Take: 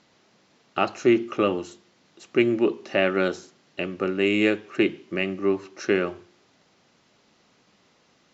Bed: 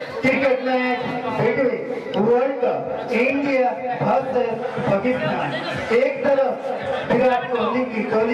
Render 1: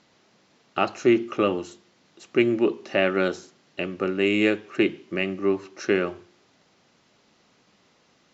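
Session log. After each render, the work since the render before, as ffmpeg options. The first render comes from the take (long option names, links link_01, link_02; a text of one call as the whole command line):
ffmpeg -i in.wav -af anull out.wav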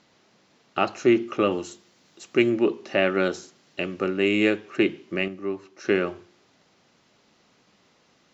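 ffmpeg -i in.wav -filter_complex "[0:a]asettb=1/sr,asplit=3[link_01][link_02][link_03];[link_01]atrim=end=1.514[link_04];[link_02]atrim=start=1.51:end=2.5,asetpts=PTS-STARTPTS,afade=type=in:duration=0.004:curve=qsin,afade=type=out:start_time=0.986:duration=0.004:curve=qsin,highshelf=frequency=6300:gain=10[link_05];[link_03]atrim=start=2.496[link_06];[link_04][link_05]acrossfade=duration=0.004:curve1=hsin:curve2=qsin[link_07];[link_07][link_06]acrossfade=duration=0.004:curve1=qsin:curve2=hsin,asettb=1/sr,asplit=3[link_08][link_09][link_10];[link_08]atrim=end=3.344[link_11];[link_09]atrim=start=3.34:end=4.07,asetpts=PTS-STARTPTS,afade=type=in:duration=0.004:curve=qsin,afade=type=out:start_time=0.726:duration=0.004:curve=qsin,highshelf=frequency=4900:gain=6[link_12];[link_10]atrim=start=4.066[link_13];[link_11][link_12]acrossfade=duration=0.004:curve1=hsin:curve2=qsin[link_14];[link_14][link_13]acrossfade=duration=0.004:curve1=qsin:curve2=hsin,asplit=3[link_15][link_16][link_17];[link_15]atrim=end=5.282[link_18];[link_16]atrim=start=5.278:end=5.852,asetpts=PTS-STARTPTS,volume=-6.5dB[link_19];[link_17]atrim=start=5.848[link_20];[link_18][link_19]acrossfade=duration=0.004:curve1=hsin:curve2=hsin[link_21];[link_21][link_20]acrossfade=duration=0.004:curve1=hsin:curve2=hsin" out.wav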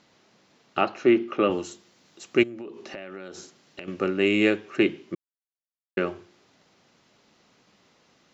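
ffmpeg -i in.wav -filter_complex "[0:a]asettb=1/sr,asplit=3[link_01][link_02][link_03];[link_01]atrim=end=0.814[link_04];[link_02]atrim=start=0.81:end=1.5,asetpts=PTS-STARTPTS,afade=type=in:duration=0.004:curve=qsin,afade=type=out:start_time=0.686:duration=0.004:curve=qsin,highpass=150,lowpass=3700[link_05];[link_03]atrim=start=1.496[link_06];[link_04][link_05]acrossfade=duration=0.004:curve1=hsin:curve2=qsin[link_07];[link_07][link_06]acrossfade=duration=0.004:curve1=qsin:curve2=hsin,asettb=1/sr,asplit=3[link_08][link_09][link_10];[link_08]atrim=end=2.434[link_11];[link_09]atrim=start=2.43:end=3.88,asetpts=PTS-STARTPTS,afade=type=in:duration=0.004:curve=qsin,afade=type=out:start_time=1.446:duration=0.004:curve=qsin,acompressor=threshold=-34dB:ratio=16:attack=3.2:release=140:knee=1:detection=peak[link_12];[link_10]atrim=start=3.876[link_13];[link_11][link_12]acrossfade=duration=0.004:curve1=hsin:curve2=qsin[link_14];[link_14][link_13]acrossfade=duration=0.004:curve1=qsin:curve2=hsin,asplit=3[link_15][link_16][link_17];[link_15]atrim=end=5.15,asetpts=PTS-STARTPTS,afade=type=out:start_time=5.146:duration=0.004:curve=hsin[link_18];[link_16]atrim=start=5.15:end=5.97,asetpts=PTS-STARTPTS,volume=0[link_19];[link_17]atrim=start=5.97,asetpts=PTS-STARTPTS,afade=type=in:duration=0.004:curve=hsin[link_20];[link_18][link_19][link_20]concat=n=3:v=0:a=1" out.wav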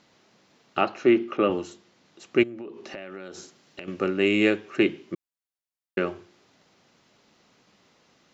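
ffmpeg -i in.wav -filter_complex "[0:a]asettb=1/sr,asplit=3[link_01][link_02][link_03];[link_01]atrim=end=1.374[link_04];[link_02]atrim=start=1.37:end=2.84,asetpts=PTS-STARTPTS,afade=type=in:duration=0.004:curve=qsin,afade=type=out:start_time=1.466:duration=0.004:curve=qsin,highshelf=frequency=6000:gain=-11[link_05];[link_03]atrim=start=2.836[link_06];[link_04][link_05]acrossfade=duration=0.004:curve1=hsin:curve2=qsin[link_07];[link_07][link_06]acrossfade=duration=0.004:curve1=qsin:curve2=hsin" out.wav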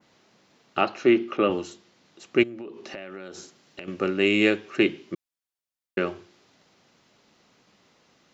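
ffmpeg -i in.wav -af "adynamicequalizer=threshold=0.00794:dfrequency=4400:dqfactor=0.75:tfrequency=4400:tqfactor=0.75:attack=5:release=100:ratio=0.375:range=2:mode=boostabove:tftype=bell" out.wav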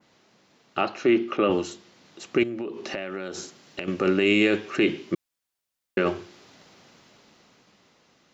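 ffmpeg -i in.wav -af "dynaudnorm=framelen=220:gausssize=13:maxgain=11.5dB,alimiter=limit=-12dB:level=0:latency=1:release=23" out.wav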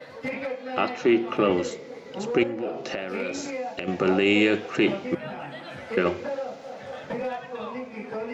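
ffmpeg -i in.wav -i bed.wav -filter_complex "[1:a]volume=-13.5dB[link_01];[0:a][link_01]amix=inputs=2:normalize=0" out.wav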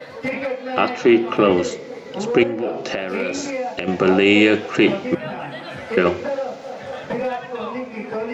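ffmpeg -i in.wav -af "volume=6.5dB" out.wav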